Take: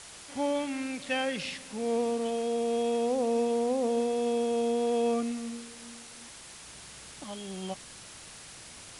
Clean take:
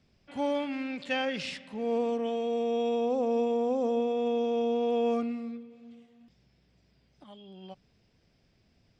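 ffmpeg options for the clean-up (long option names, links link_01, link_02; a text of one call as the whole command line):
ffmpeg -i in.wav -af "adeclick=threshold=4,afwtdn=0.0056,asetnsamples=nb_out_samples=441:pad=0,asendcmd='6.64 volume volume -9dB',volume=0dB" out.wav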